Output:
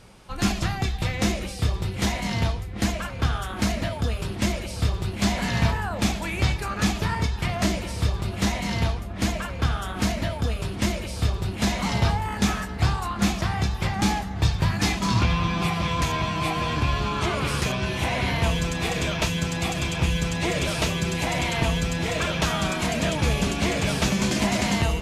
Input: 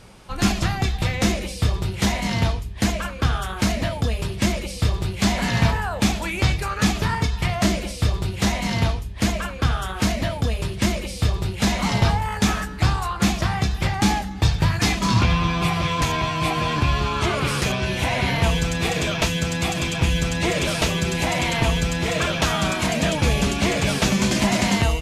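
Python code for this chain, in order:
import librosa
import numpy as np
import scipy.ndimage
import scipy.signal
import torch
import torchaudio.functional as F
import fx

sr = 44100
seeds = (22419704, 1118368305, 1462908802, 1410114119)

y = fx.echo_filtered(x, sr, ms=771, feedback_pct=83, hz=2500.0, wet_db=-14.0)
y = y * librosa.db_to_amplitude(-3.5)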